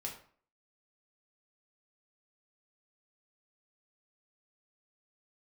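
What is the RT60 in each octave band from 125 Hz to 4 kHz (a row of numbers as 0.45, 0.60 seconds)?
0.45, 0.50, 0.50, 0.50, 0.45, 0.35 seconds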